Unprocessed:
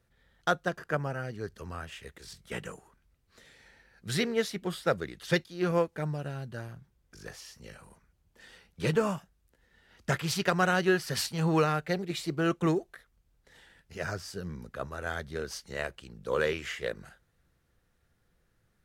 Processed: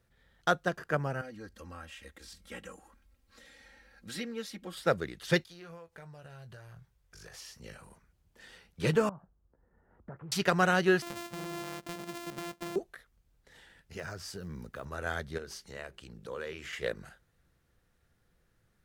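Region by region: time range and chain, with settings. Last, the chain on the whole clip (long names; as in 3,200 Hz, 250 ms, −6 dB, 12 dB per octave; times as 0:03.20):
0:01.21–0:04.77: comb filter 3.7 ms, depth 96% + downward compressor 1.5 to 1, threshold −56 dBFS
0:05.44–0:07.34: parametric band 260 Hz −14 dB 1 octave + downward compressor 8 to 1, threshold −46 dBFS + double-tracking delay 24 ms −11.5 dB
0:09.09–0:10.32: low-pass filter 1,200 Hz 24 dB per octave + downward compressor 3 to 1, threshold −46 dBFS
0:11.02–0:12.76: samples sorted by size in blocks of 128 samples + high-pass filter 150 Hz 6 dB per octave + downward compressor 8 to 1, threshold −36 dBFS
0:13.99–0:14.86: one scale factor per block 7 bits + downward compressor 4 to 1, threshold −37 dBFS
0:15.38–0:16.73: downward compressor 2 to 1, threshold −44 dBFS + mains-hum notches 50/100/150/200/250/300/350/400 Hz
whole clip: no processing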